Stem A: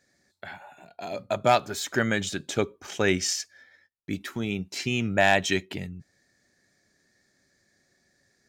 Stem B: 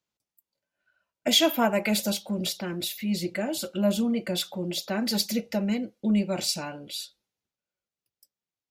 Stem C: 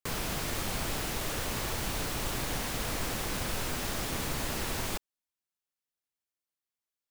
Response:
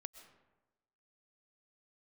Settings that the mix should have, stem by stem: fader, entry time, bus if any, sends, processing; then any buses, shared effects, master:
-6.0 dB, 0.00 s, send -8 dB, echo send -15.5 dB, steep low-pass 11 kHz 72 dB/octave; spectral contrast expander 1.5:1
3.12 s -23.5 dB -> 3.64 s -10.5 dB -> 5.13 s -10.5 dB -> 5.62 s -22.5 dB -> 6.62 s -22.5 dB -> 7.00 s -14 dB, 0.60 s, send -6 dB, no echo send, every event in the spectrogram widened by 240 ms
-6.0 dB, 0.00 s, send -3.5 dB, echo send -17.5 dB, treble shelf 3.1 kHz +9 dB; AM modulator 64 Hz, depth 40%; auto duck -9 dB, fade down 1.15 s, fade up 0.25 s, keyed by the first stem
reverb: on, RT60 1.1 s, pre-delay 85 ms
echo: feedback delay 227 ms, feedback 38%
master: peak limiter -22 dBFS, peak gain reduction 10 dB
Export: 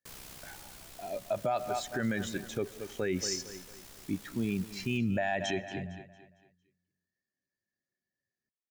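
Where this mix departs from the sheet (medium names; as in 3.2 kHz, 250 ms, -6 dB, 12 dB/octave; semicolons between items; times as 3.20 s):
stem A -6.0 dB -> +0.5 dB; stem B: muted; stem C -6.0 dB -> -17.5 dB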